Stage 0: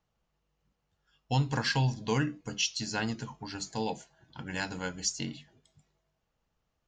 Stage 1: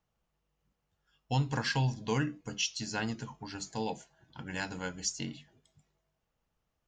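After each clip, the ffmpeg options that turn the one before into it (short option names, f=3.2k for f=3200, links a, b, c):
-af "equalizer=f=4.3k:t=o:w=0.38:g=-2.5,volume=-2dB"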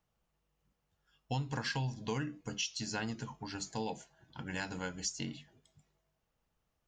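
-af "acompressor=threshold=-34dB:ratio=3"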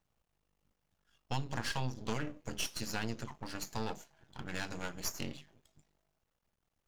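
-af "aeval=exprs='max(val(0),0)':c=same,volume=3.5dB"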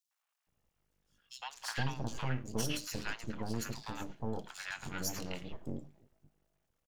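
-filter_complex "[0:a]acrossover=split=870|3800[a][b][c];[b]adelay=110[d];[a]adelay=470[e];[e][d][c]amix=inputs=3:normalize=0,volume=1.5dB"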